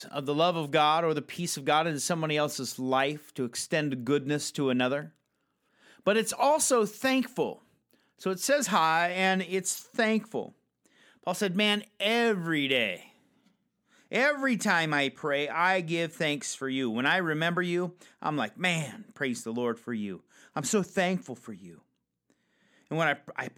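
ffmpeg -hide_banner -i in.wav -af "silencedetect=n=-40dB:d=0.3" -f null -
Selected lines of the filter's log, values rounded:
silence_start: 5.06
silence_end: 6.06 | silence_duration: 1.00
silence_start: 7.53
silence_end: 8.22 | silence_duration: 0.68
silence_start: 10.49
silence_end: 11.27 | silence_duration: 0.78
silence_start: 13.00
silence_end: 14.12 | silence_duration: 1.11
silence_start: 20.17
silence_end: 20.56 | silence_duration: 0.40
silence_start: 21.71
silence_end: 22.91 | silence_duration: 1.20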